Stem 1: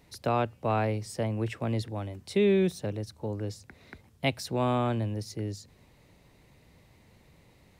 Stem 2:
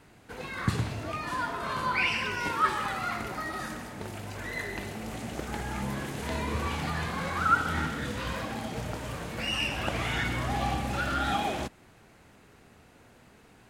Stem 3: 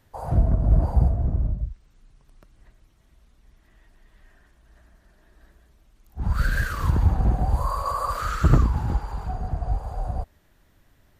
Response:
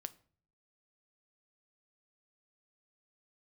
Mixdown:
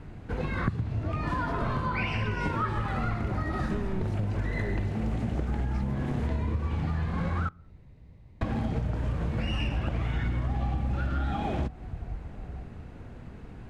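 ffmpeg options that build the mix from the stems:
-filter_complex "[0:a]volume=29.9,asoftclip=hard,volume=0.0335,adelay=1350,volume=0.562[s0];[1:a]volume=1.19,asplit=3[s1][s2][s3];[s1]atrim=end=7.49,asetpts=PTS-STARTPTS,afade=t=out:st=7.486:d=0.004:c=hsin[s4];[s2]atrim=start=7.49:end=8.41,asetpts=PTS-STARTPTS,volume=0[s5];[s3]atrim=start=8.41,asetpts=PTS-STARTPTS,afade=t=in:d=0.004:c=hsin[s6];[s4][s5][s6]concat=n=3:v=0:a=1,asplit=2[s7][s8];[s8]volume=0.562[s9];[2:a]highpass=f=150:p=1,adelay=2400,volume=0.112[s10];[3:a]atrim=start_sample=2205[s11];[s9][s11]afir=irnorm=-1:irlink=0[s12];[s0][s7][s10][s12]amix=inputs=4:normalize=0,aemphasis=mode=reproduction:type=riaa,acompressor=threshold=0.0562:ratio=16"

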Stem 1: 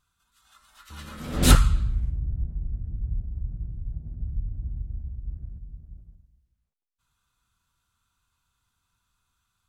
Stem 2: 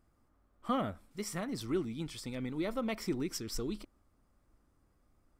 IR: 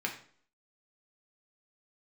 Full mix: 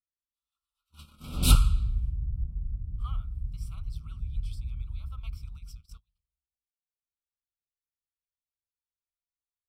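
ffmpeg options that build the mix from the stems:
-filter_complex "[0:a]equalizer=f=480:t=o:w=2.3:g=-12.5,volume=0.794[s0];[1:a]highpass=f=1200:w=0.5412,highpass=f=1200:w=1.3066,tremolo=f=2.8:d=0.42,adelay=2350,volume=0.447[s1];[s0][s1]amix=inputs=2:normalize=0,agate=range=0.0355:threshold=0.00708:ratio=16:detection=peak,asuperstop=centerf=1800:order=8:qfactor=2,equalizer=f=6700:w=4:g=-10"

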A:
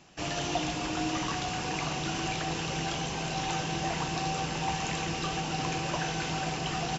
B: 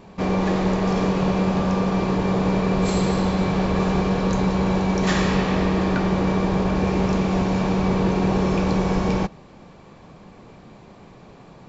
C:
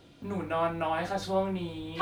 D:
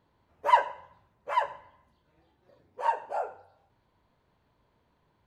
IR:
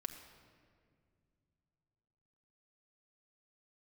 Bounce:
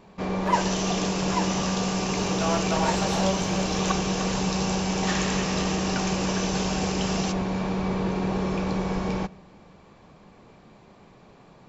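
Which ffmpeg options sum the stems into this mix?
-filter_complex "[0:a]equalizer=f=6000:t=o:w=1.6:g=10,adelay=350,volume=0.708[s0];[1:a]volume=0.501,asplit=2[s1][s2];[s2]volume=0.224[s3];[2:a]adelay=1900,volume=1.19,asplit=2[s4][s5];[s5]volume=0.355[s6];[3:a]volume=0.75[s7];[4:a]atrim=start_sample=2205[s8];[s3][s8]afir=irnorm=-1:irlink=0[s9];[s6]aecho=0:1:302|604|906|1208|1510|1812:1|0.41|0.168|0.0689|0.0283|0.0116[s10];[s0][s1][s4][s7][s9][s10]amix=inputs=6:normalize=0,lowshelf=f=420:g=-3"

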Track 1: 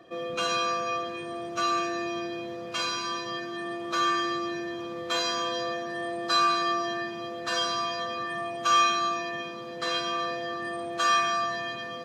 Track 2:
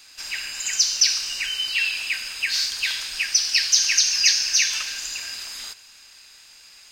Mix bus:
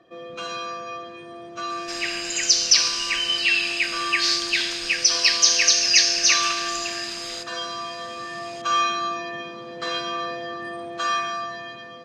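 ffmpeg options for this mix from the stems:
-filter_complex "[0:a]volume=0.631[s0];[1:a]adelay=1700,volume=1.19[s1];[s0][s1]amix=inputs=2:normalize=0,lowpass=7200,dynaudnorm=f=570:g=7:m=2"

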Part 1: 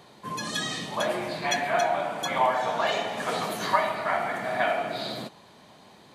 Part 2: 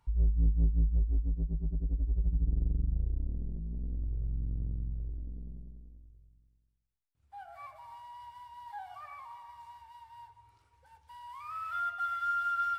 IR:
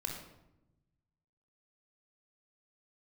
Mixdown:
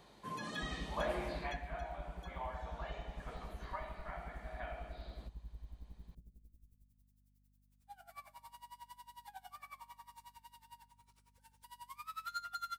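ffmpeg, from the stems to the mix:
-filter_complex "[0:a]acrossover=split=3000[s0][s1];[s1]acompressor=threshold=0.00501:ratio=4:attack=1:release=60[s2];[s0][s2]amix=inputs=2:normalize=0,volume=0.335,afade=t=out:st=1.36:d=0.24:silence=0.266073[s3];[1:a]asoftclip=type=tanh:threshold=0.02,crystalizer=i=7.5:c=0,aeval=exprs='val(0)*pow(10,-25*(0.5-0.5*cos(2*PI*11*n/s))/20)':c=same,adelay=550,volume=0.531,asplit=2[s4][s5];[s5]volume=0.126[s6];[2:a]atrim=start_sample=2205[s7];[s6][s7]afir=irnorm=-1:irlink=0[s8];[s3][s4][s8]amix=inputs=3:normalize=0,aeval=exprs='val(0)+0.000282*(sin(2*PI*50*n/s)+sin(2*PI*2*50*n/s)/2+sin(2*PI*3*50*n/s)/3+sin(2*PI*4*50*n/s)/4+sin(2*PI*5*50*n/s)/5)':c=same"

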